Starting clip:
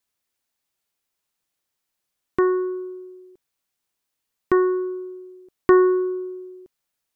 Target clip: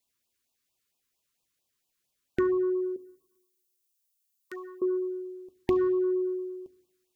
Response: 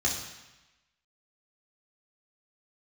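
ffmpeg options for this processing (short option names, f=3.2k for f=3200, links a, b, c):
-filter_complex "[0:a]asettb=1/sr,asplit=3[a][b][c];[a]atrim=end=2.964[d];[b]atrim=start=2.96:end=4.82,asetpts=PTS-STARTPTS,afade=t=in:d=0.004:c=qsin,afade=t=out:st=1.856:d=0.004:c=qsin,aderivative[e];[c]atrim=start=4.816[f];[d][e]acrossfade=d=0.004:c1=hsin:c2=qsin[g];[g][f]acrossfade=d=0.004:c1=qsin:c2=hsin,acompressor=threshold=-26dB:ratio=6,asplit=2[h][i];[1:a]atrim=start_sample=2205,adelay=7[j];[i][j]afir=irnorm=-1:irlink=0,volume=-19dB[k];[h][k]amix=inputs=2:normalize=0,afftfilt=real='re*(1-between(b*sr/1024,640*pow(1800/640,0.5+0.5*sin(2*PI*4.4*pts/sr))/1.41,640*pow(1800/640,0.5+0.5*sin(2*PI*4.4*pts/sr))*1.41))':imag='im*(1-between(b*sr/1024,640*pow(1800/640,0.5+0.5*sin(2*PI*4.4*pts/sr))/1.41,640*pow(1800/640,0.5+0.5*sin(2*PI*4.4*pts/sr))*1.41))':win_size=1024:overlap=0.75"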